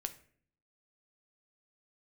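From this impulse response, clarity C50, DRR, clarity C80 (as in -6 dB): 14.5 dB, 7.5 dB, 18.5 dB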